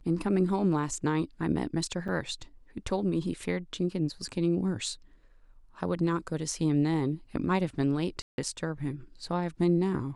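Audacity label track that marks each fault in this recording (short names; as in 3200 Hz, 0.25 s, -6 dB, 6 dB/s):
2.080000	2.090000	gap 6.9 ms
8.220000	8.380000	gap 0.161 s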